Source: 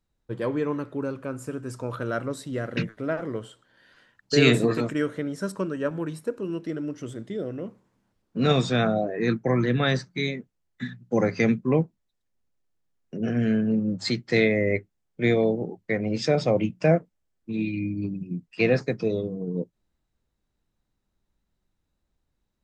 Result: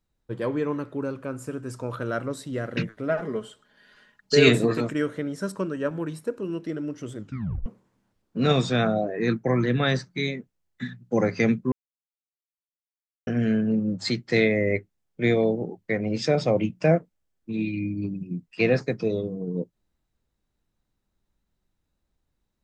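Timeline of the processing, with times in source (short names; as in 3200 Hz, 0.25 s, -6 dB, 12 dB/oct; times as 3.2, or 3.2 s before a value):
3.09–4.49 comb 4.8 ms
7.18 tape stop 0.48 s
11.72–13.27 mute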